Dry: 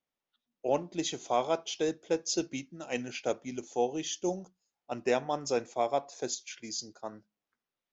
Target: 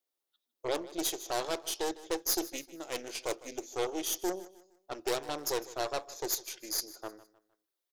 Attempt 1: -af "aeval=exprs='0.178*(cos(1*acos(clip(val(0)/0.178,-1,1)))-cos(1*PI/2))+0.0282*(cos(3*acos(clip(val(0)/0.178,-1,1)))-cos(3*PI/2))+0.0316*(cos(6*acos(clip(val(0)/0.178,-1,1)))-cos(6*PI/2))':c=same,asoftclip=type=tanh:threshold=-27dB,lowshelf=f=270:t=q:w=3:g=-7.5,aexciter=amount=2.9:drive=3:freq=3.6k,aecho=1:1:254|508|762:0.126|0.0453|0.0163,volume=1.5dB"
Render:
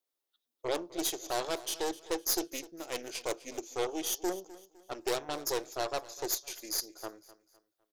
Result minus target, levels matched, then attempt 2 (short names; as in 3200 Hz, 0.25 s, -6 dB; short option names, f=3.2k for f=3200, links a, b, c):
echo 0.1 s late
-af "aeval=exprs='0.178*(cos(1*acos(clip(val(0)/0.178,-1,1)))-cos(1*PI/2))+0.0282*(cos(3*acos(clip(val(0)/0.178,-1,1)))-cos(3*PI/2))+0.0316*(cos(6*acos(clip(val(0)/0.178,-1,1)))-cos(6*PI/2))':c=same,asoftclip=type=tanh:threshold=-27dB,lowshelf=f=270:t=q:w=3:g=-7.5,aexciter=amount=2.9:drive=3:freq=3.6k,aecho=1:1:154|308|462:0.126|0.0453|0.0163,volume=1.5dB"